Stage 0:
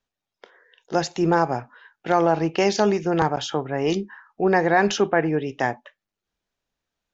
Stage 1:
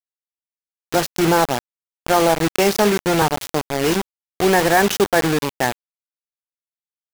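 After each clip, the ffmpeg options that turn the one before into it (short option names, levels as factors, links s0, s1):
-af "acrusher=bits=3:mix=0:aa=0.000001,volume=1.41"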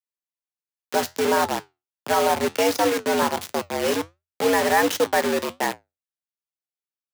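-af "afreqshift=84,flanger=delay=8.1:depth=4.6:regen=-71:speed=1.4:shape=triangular"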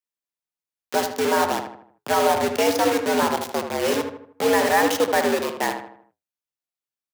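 -filter_complex "[0:a]asplit=2[s0][s1];[s1]adelay=78,lowpass=f=2200:p=1,volume=0.473,asplit=2[s2][s3];[s3]adelay=78,lowpass=f=2200:p=1,volume=0.46,asplit=2[s4][s5];[s5]adelay=78,lowpass=f=2200:p=1,volume=0.46,asplit=2[s6][s7];[s7]adelay=78,lowpass=f=2200:p=1,volume=0.46,asplit=2[s8][s9];[s9]adelay=78,lowpass=f=2200:p=1,volume=0.46[s10];[s0][s2][s4][s6][s8][s10]amix=inputs=6:normalize=0"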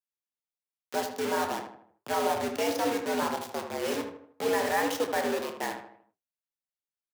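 -filter_complex "[0:a]flanger=delay=3.6:depth=9.5:regen=81:speed=1.8:shape=triangular,asplit=2[s0][s1];[s1]adelay=28,volume=0.282[s2];[s0][s2]amix=inputs=2:normalize=0,volume=0.596"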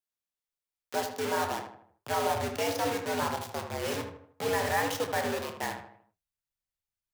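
-af "asubboost=boost=11:cutoff=91"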